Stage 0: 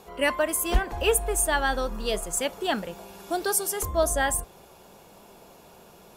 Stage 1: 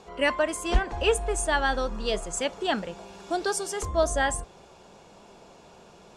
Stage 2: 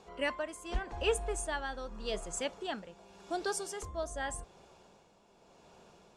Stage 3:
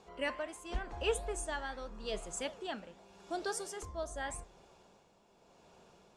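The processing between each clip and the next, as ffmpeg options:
-af "lowpass=f=7.8k:w=0.5412,lowpass=f=7.8k:w=1.3066"
-af "tremolo=f=0.86:d=0.57,volume=-7dB"
-af "flanger=delay=8.5:depth=9.8:regen=-87:speed=1.6:shape=triangular,volume=2dB"

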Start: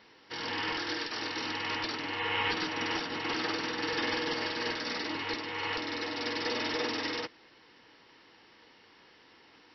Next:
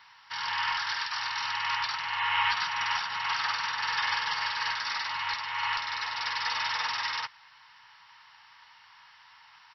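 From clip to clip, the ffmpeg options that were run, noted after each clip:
-af "firequalizer=gain_entry='entry(130,0);entry(320,-27);entry(910,14);entry(2200,9)':delay=0.05:min_phase=1,volume=-6dB"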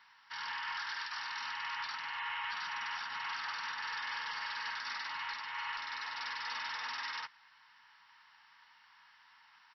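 -af "equalizer=f=100:t=o:w=0.67:g=-8,equalizer=f=250:t=o:w=0.67:g=7,equalizer=f=1.6k:t=o:w=0.67:g=4,alimiter=limit=-21.5dB:level=0:latency=1:release=25,volume=-9dB"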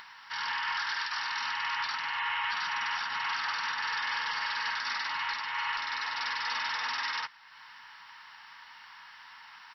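-af "acompressor=mode=upward:threshold=-50dB:ratio=2.5,volume=7dB"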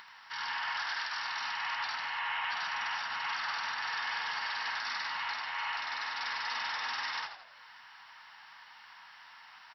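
-filter_complex "[0:a]highpass=78,asplit=2[a][b];[b]asplit=5[c][d][e][f][g];[c]adelay=82,afreqshift=-84,volume=-8.5dB[h];[d]adelay=164,afreqshift=-168,volume=-15.6dB[i];[e]adelay=246,afreqshift=-252,volume=-22.8dB[j];[f]adelay=328,afreqshift=-336,volume=-29.9dB[k];[g]adelay=410,afreqshift=-420,volume=-37dB[l];[h][i][j][k][l]amix=inputs=5:normalize=0[m];[a][m]amix=inputs=2:normalize=0,volume=-3.5dB"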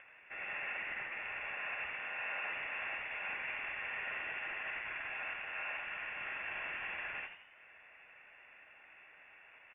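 -af "lowpass=f=3.1k:t=q:w=0.5098,lowpass=f=3.1k:t=q:w=0.6013,lowpass=f=3.1k:t=q:w=0.9,lowpass=f=3.1k:t=q:w=2.563,afreqshift=-3600,volume=-5dB"

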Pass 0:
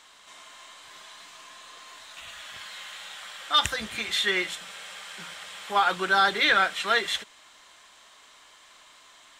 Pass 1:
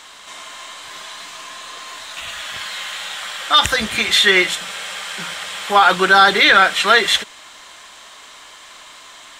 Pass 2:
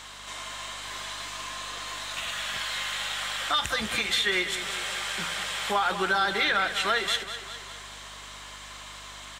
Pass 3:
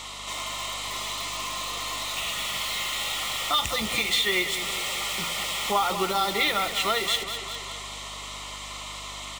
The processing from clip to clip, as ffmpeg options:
-af "alimiter=level_in=14dB:limit=-1dB:release=50:level=0:latency=1,volume=-1dB"
-filter_complex "[0:a]acompressor=threshold=-25dB:ratio=2.5,aeval=exprs='val(0)+0.00224*(sin(2*PI*50*n/s)+sin(2*PI*2*50*n/s)/2+sin(2*PI*3*50*n/s)/3+sin(2*PI*4*50*n/s)/4+sin(2*PI*5*50*n/s)/5)':c=same,asplit=2[a][b];[b]aecho=0:1:200|400|600|800|1000|1200:0.282|0.155|0.0853|0.0469|0.0258|0.0142[c];[a][c]amix=inputs=2:normalize=0,volume=-3dB"
-filter_complex "[0:a]asplit=2[a][b];[b]aeval=exprs='(mod(31.6*val(0)+1,2)-1)/31.6':c=same,volume=-5dB[c];[a][c]amix=inputs=2:normalize=0,asuperstop=centerf=1600:order=4:qfactor=3.2,volume=2dB"

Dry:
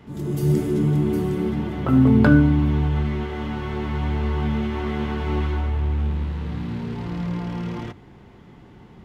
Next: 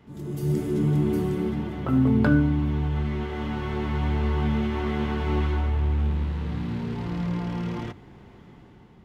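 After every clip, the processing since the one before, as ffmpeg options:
-af "dynaudnorm=f=200:g=7:m=6dB,volume=-7dB"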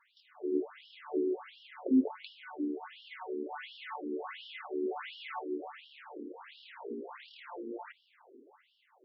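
-af "afftfilt=real='re*between(b*sr/1024,330*pow(4000/330,0.5+0.5*sin(2*PI*1.4*pts/sr))/1.41,330*pow(4000/330,0.5+0.5*sin(2*PI*1.4*pts/sr))*1.41)':imag='im*between(b*sr/1024,330*pow(4000/330,0.5+0.5*sin(2*PI*1.4*pts/sr))/1.41,330*pow(4000/330,0.5+0.5*sin(2*PI*1.4*pts/sr))*1.41)':win_size=1024:overlap=0.75,volume=-1dB"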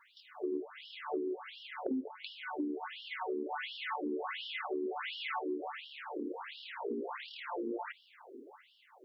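-af "acompressor=threshold=-39dB:ratio=12,volume=6dB"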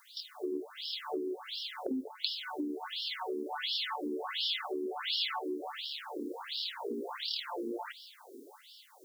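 -af "aexciter=amount=11.6:drive=4.1:freq=3.6k"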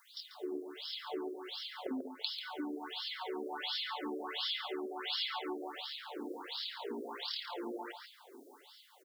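-filter_complex "[0:a]asplit=2[a][b];[b]adelay=140,highpass=300,lowpass=3.4k,asoftclip=type=hard:threshold=-22.5dB,volume=-6dB[c];[a][c]amix=inputs=2:normalize=0,volume=-4dB"

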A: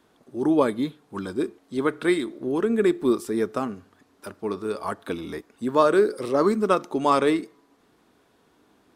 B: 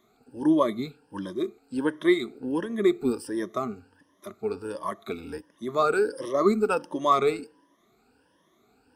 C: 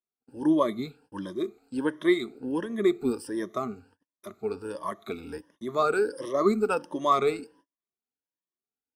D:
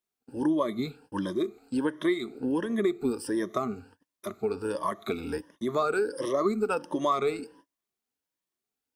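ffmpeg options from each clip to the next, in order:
-af "afftfilt=real='re*pow(10,18/40*sin(2*PI*(1.2*log(max(b,1)*sr/1024/100)/log(2)-(1.4)*(pts-256)/sr)))':imag='im*pow(10,18/40*sin(2*PI*(1.2*log(max(b,1)*sr/1024/100)/log(2)-(1.4)*(pts-256)/sr)))':win_size=1024:overlap=0.75,volume=-6.5dB"
-af "agate=range=-37dB:threshold=-55dB:ratio=16:detection=peak,volume=-1.5dB"
-af "acompressor=threshold=-32dB:ratio=3,volume=6dB"

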